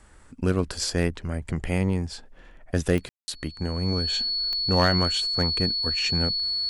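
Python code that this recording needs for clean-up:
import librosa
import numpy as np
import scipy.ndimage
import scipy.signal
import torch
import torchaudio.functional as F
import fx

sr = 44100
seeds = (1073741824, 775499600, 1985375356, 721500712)

y = fx.fix_declip(x, sr, threshold_db=-10.5)
y = fx.fix_declick_ar(y, sr, threshold=10.0)
y = fx.notch(y, sr, hz=4400.0, q=30.0)
y = fx.fix_ambience(y, sr, seeds[0], print_start_s=0.0, print_end_s=0.5, start_s=3.09, end_s=3.28)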